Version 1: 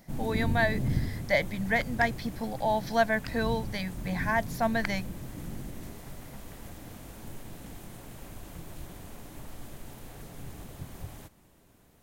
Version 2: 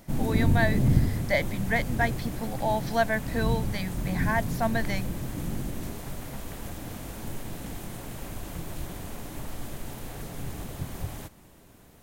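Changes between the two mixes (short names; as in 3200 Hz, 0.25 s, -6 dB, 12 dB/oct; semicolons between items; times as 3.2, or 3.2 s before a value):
first sound +7.0 dB; second sound -11.5 dB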